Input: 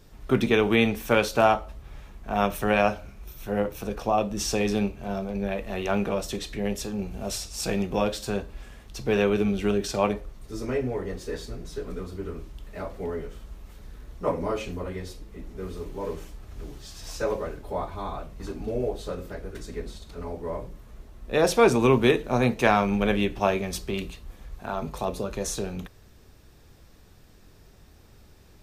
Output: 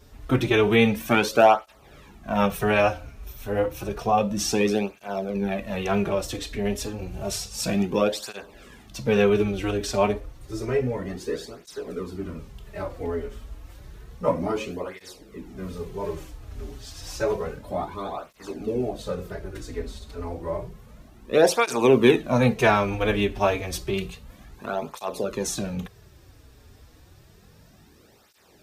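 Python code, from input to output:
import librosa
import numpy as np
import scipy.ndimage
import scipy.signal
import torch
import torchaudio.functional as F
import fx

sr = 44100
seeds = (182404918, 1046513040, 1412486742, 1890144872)

y = fx.flanger_cancel(x, sr, hz=0.3, depth_ms=6.2)
y = y * librosa.db_to_amplitude(5.0)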